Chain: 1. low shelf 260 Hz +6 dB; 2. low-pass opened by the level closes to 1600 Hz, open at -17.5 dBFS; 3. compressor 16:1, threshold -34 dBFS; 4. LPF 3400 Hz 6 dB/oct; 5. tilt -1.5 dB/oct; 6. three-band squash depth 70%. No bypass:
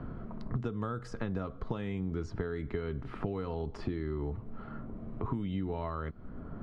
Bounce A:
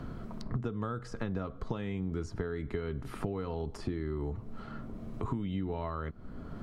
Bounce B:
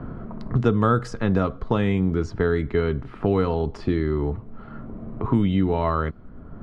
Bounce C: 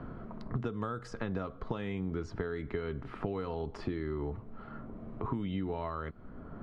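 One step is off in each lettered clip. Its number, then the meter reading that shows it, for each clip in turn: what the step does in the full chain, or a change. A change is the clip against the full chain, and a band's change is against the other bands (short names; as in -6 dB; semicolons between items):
2, 4 kHz band +2.0 dB; 3, mean gain reduction 10.0 dB; 1, 125 Hz band -3.5 dB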